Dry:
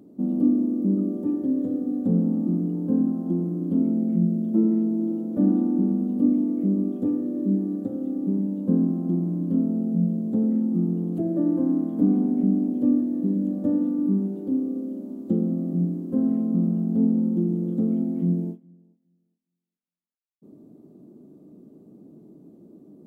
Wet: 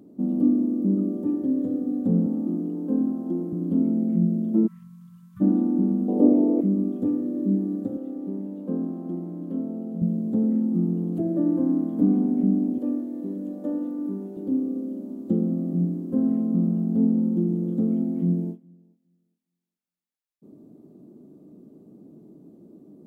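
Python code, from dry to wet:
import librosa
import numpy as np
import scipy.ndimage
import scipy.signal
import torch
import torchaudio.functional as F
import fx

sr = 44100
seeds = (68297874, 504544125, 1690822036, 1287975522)

y = fx.highpass(x, sr, hz=220.0, slope=24, at=(2.26, 3.53))
y = fx.brickwall_bandstop(y, sr, low_hz=180.0, high_hz=1000.0, at=(4.66, 5.4), fade=0.02)
y = fx.band_shelf(y, sr, hz=570.0, db=15.0, octaves=1.7, at=(6.08, 6.61))
y = fx.bass_treble(y, sr, bass_db=-13, treble_db=-5, at=(7.97, 10.02))
y = fx.highpass(y, sr, hz=360.0, slope=12, at=(12.78, 14.37))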